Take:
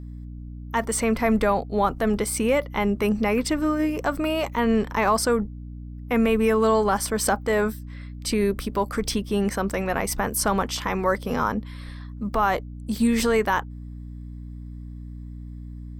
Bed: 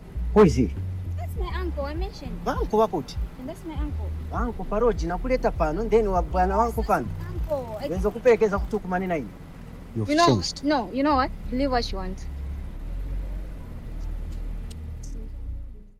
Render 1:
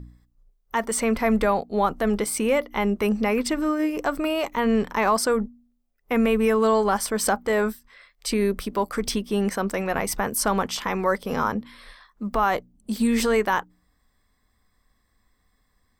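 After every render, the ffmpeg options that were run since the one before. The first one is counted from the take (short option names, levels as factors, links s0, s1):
-af "bandreject=f=60:t=h:w=4,bandreject=f=120:t=h:w=4,bandreject=f=180:t=h:w=4,bandreject=f=240:t=h:w=4,bandreject=f=300:t=h:w=4"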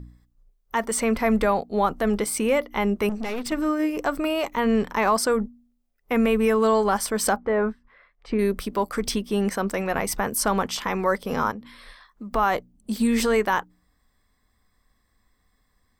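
-filter_complex "[0:a]asettb=1/sr,asplit=3[s0][s1][s2];[s0]atrim=end=3.094[s3];[s1]atrim=start=3.09:end=3.52,asetpts=PTS-STARTPTS,afade=t=in:d=0.004:c=qsin,afade=t=out:st=0.426:d=0.004:c=qsin,aeval=exprs='(tanh(20*val(0)+0.55)-tanh(0.55))/20':c=same[s4];[s2]atrim=start=3.516[s5];[s3][s4]acrossfade=d=0.004:c1=hsin:c2=qsin[s6];[s6][s5]acrossfade=d=0.004:c1=qsin:c2=hsin,asettb=1/sr,asplit=3[s7][s8][s9];[s7]atrim=end=7.364[s10];[s8]atrim=start=7.36:end=8.39,asetpts=PTS-STARTPTS,afade=t=in:d=0.004:c=qsin,afade=t=out:st=1.026:d=0.004:c=qsin,lowpass=1600[s11];[s9]atrim=start=8.386[s12];[s10][s11]acrossfade=d=0.004:c1=hsin:c2=qsin[s13];[s13][s12]acrossfade=d=0.004:c1=qsin:c2=hsin,asettb=1/sr,asplit=3[s14][s15][s16];[s14]atrim=end=11.514[s17];[s15]atrim=start=11.51:end=12.34,asetpts=PTS-STARTPTS,afade=t=in:d=0.004:c=qsin,afade=t=out:st=0.826:d=0.004:c=qsin,acompressor=threshold=0.0224:ratio=6:attack=3.2:release=140:knee=1:detection=peak[s18];[s16]atrim=start=12.336[s19];[s17][s18]acrossfade=d=0.004:c1=hsin:c2=qsin[s20];[s20][s19]acrossfade=d=0.004:c1=qsin:c2=hsin"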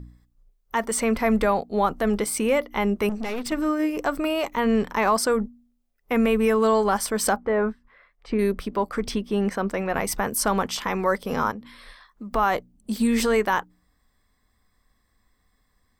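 -filter_complex "[0:a]asettb=1/sr,asplit=3[s0][s1][s2];[s0]atrim=end=8.524[s3];[s1]atrim=start=8.52:end=9.94,asetpts=PTS-STARTPTS,afade=t=in:d=0.004:c=qsin,afade=t=out:st=1.416:d=0.004:c=qsin,highshelf=f=5300:g=-11.5[s4];[s2]atrim=start=9.936[s5];[s3][s4]acrossfade=d=0.004:c1=hsin:c2=qsin[s6];[s6][s5]acrossfade=d=0.004:c1=qsin:c2=hsin"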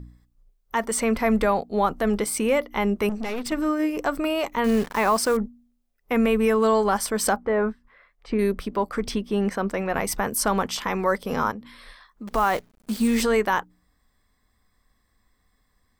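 -filter_complex "[0:a]asettb=1/sr,asplit=3[s0][s1][s2];[s0]atrim=end=4.644[s3];[s1]atrim=start=4.64:end=5.37,asetpts=PTS-STARTPTS,afade=t=in:d=0.004:c=qsin,afade=t=out:st=0.726:d=0.004:c=qsin,acrusher=bits=7:dc=4:mix=0:aa=0.000001[s4];[s2]atrim=start=5.366[s5];[s3][s4]acrossfade=d=0.004:c1=hsin:c2=qsin[s6];[s6][s5]acrossfade=d=0.004:c1=qsin:c2=hsin,asettb=1/sr,asplit=3[s7][s8][s9];[s7]atrim=end=12.274[s10];[s8]atrim=start=12.27:end=13.22,asetpts=PTS-STARTPTS,afade=t=in:d=0.004:c=qsin,afade=t=out:st=0.946:d=0.004:c=qsin,acrusher=bits=7:dc=4:mix=0:aa=0.000001[s11];[s9]atrim=start=13.216[s12];[s10][s11]acrossfade=d=0.004:c1=hsin:c2=qsin[s13];[s13][s12]acrossfade=d=0.004:c1=qsin:c2=hsin"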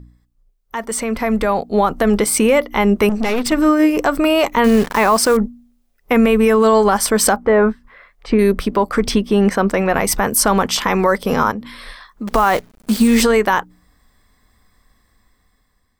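-af "alimiter=limit=0.168:level=0:latency=1:release=149,dynaudnorm=f=560:g=5:m=3.76"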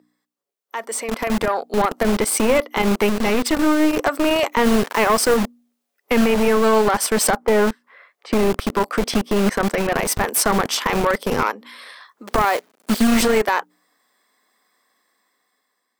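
-filter_complex "[0:a]aeval=exprs='(tanh(2.82*val(0)+0.6)-tanh(0.6))/2.82':c=same,acrossover=split=290|2200[s0][s1][s2];[s0]acrusher=bits=3:mix=0:aa=0.000001[s3];[s3][s1][s2]amix=inputs=3:normalize=0"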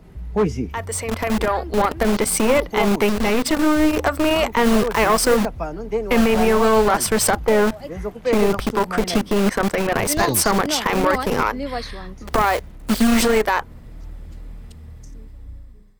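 -filter_complex "[1:a]volume=0.668[s0];[0:a][s0]amix=inputs=2:normalize=0"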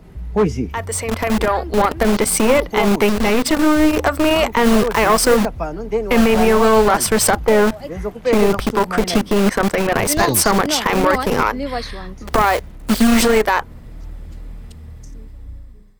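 -af "volume=1.41,alimiter=limit=0.708:level=0:latency=1"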